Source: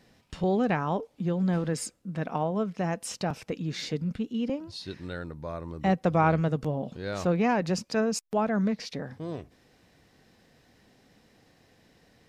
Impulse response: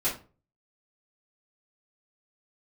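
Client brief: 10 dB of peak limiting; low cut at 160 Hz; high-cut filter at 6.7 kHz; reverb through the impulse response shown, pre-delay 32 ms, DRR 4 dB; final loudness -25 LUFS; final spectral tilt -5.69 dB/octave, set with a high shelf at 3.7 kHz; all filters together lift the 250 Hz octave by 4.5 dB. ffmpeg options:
-filter_complex "[0:a]highpass=160,lowpass=6700,equalizer=f=250:t=o:g=8,highshelf=f=3700:g=8.5,alimiter=limit=0.133:level=0:latency=1,asplit=2[s0][s1];[1:a]atrim=start_sample=2205,adelay=32[s2];[s1][s2]afir=irnorm=-1:irlink=0,volume=0.237[s3];[s0][s3]amix=inputs=2:normalize=0,volume=1.33"

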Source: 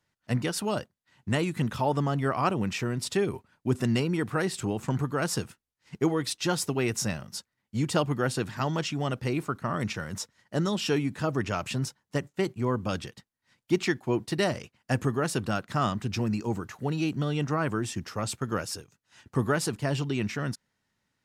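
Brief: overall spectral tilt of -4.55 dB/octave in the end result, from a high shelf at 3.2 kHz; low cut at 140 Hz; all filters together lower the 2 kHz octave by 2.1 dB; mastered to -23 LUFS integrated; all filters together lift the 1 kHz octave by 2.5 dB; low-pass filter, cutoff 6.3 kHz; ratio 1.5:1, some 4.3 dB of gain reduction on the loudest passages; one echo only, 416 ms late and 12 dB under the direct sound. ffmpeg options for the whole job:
-af "highpass=140,lowpass=6300,equalizer=f=1000:t=o:g=4.5,equalizer=f=2000:t=o:g=-7.5,highshelf=f=3200:g=8,acompressor=threshold=0.0282:ratio=1.5,aecho=1:1:416:0.251,volume=2.99"

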